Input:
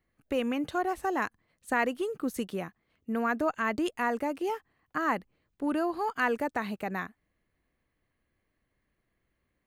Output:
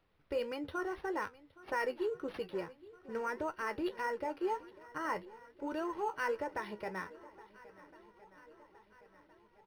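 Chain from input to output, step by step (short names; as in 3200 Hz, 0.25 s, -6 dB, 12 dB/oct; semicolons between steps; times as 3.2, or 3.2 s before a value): comb 2.1 ms, depth 71%; in parallel at -2.5 dB: limiter -23 dBFS, peak gain reduction 10 dB; on the sum: added noise pink -64 dBFS; flange 1.7 Hz, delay 9.2 ms, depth 5.4 ms, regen +57%; on a send: swung echo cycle 1.364 s, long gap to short 1.5:1, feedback 52%, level -20 dB; on the sum: decimation joined by straight lines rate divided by 6×; gain -7 dB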